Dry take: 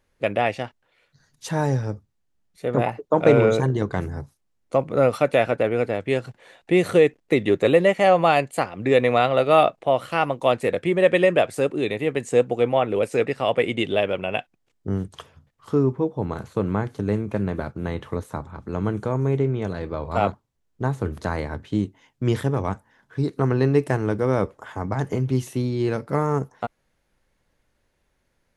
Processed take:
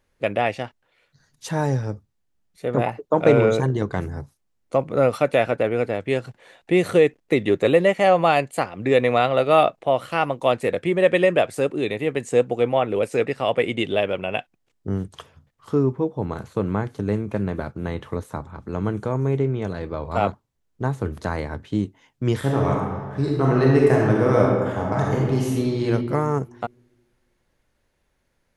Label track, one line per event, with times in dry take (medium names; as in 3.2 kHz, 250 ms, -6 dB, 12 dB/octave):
22.380000	25.850000	reverb throw, RT60 1.5 s, DRR -3 dB